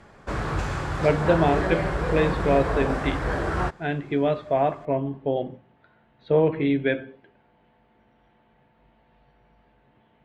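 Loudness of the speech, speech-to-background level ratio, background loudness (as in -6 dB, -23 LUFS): -25.0 LUFS, 2.5 dB, -27.5 LUFS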